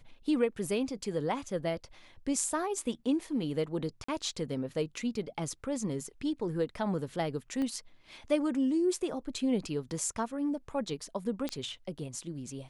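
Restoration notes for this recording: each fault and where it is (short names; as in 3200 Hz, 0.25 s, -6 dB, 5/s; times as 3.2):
4.04–4.08 gap 44 ms
7.62 pop -24 dBFS
11.49 pop -20 dBFS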